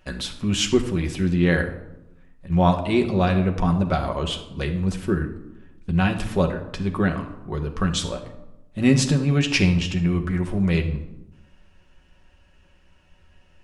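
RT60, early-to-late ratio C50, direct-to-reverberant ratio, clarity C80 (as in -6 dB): 0.90 s, 10.0 dB, 3.5 dB, 12.5 dB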